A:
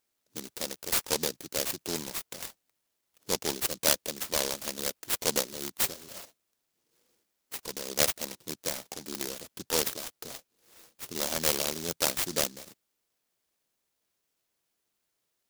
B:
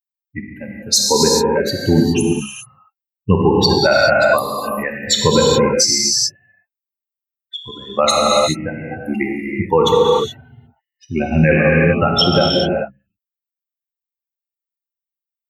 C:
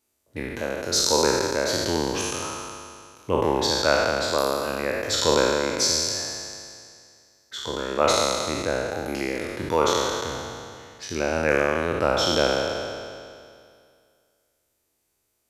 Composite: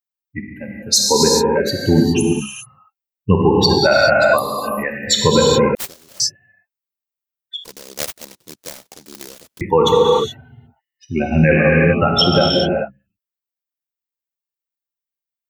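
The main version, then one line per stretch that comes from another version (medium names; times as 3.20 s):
B
5.75–6.20 s: from A
7.64–9.61 s: from A
not used: C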